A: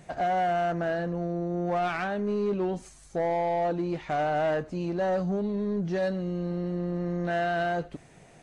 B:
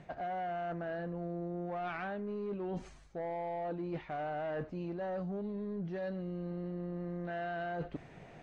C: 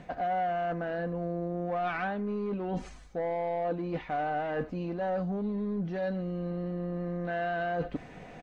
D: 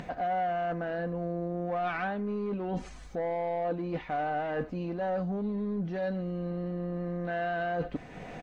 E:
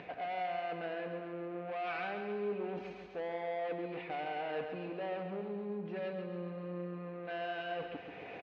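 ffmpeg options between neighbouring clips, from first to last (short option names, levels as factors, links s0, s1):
-af "areverse,acompressor=threshold=0.0141:ratio=10,areverse,lowpass=3200,volume=1.12"
-af "aecho=1:1:4:0.36,volume=2"
-af "acompressor=mode=upward:threshold=0.0178:ratio=2.5"
-af "asoftclip=type=tanh:threshold=0.0299,highpass=140,equalizer=f=150:t=q:w=4:g=-6,equalizer=f=230:t=q:w=4:g=-9,equalizer=f=420:t=q:w=4:g=5,equalizer=f=2500:t=q:w=4:g=9,lowpass=f=4300:w=0.5412,lowpass=f=4300:w=1.3066,aecho=1:1:136|272|408|544|680|816|952:0.447|0.259|0.15|0.0872|0.0505|0.0293|0.017,volume=0.562"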